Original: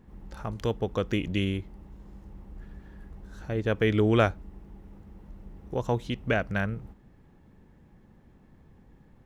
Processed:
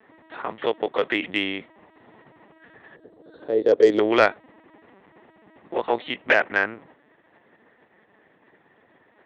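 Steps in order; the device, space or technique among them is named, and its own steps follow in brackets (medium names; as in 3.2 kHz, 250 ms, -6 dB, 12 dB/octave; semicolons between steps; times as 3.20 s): talking toy (LPC vocoder at 8 kHz pitch kept; high-pass 470 Hz 12 dB/octave; peaking EQ 1.9 kHz +8 dB 0.3 oct; saturation -12.5 dBFS, distortion -20 dB); 2.96–3.99 s: FFT filter 190 Hz 0 dB, 480 Hz +8 dB, 930 Hz -10 dB, 2.4 kHz -18 dB, 4.7 kHz +3 dB; trim +9 dB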